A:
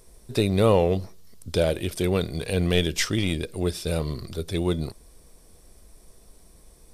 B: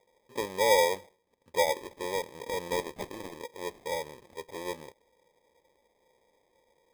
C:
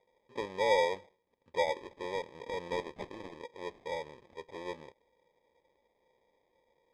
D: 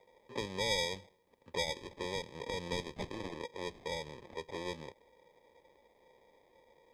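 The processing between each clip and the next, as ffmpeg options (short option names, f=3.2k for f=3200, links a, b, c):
-filter_complex "[0:a]asplit=3[a][b][c];[a]bandpass=f=530:t=q:w=8,volume=0dB[d];[b]bandpass=f=1.84k:t=q:w=8,volume=-6dB[e];[c]bandpass=f=2.48k:t=q:w=8,volume=-9dB[f];[d][e][f]amix=inputs=3:normalize=0,acrusher=samples=31:mix=1:aa=0.000001,volume=1.5dB"
-af "lowpass=4.1k,volume=-4dB"
-filter_complex "[0:a]acrossover=split=210|3000[a][b][c];[b]acompressor=threshold=-48dB:ratio=4[d];[a][d][c]amix=inputs=3:normalize=0,volume=8dB"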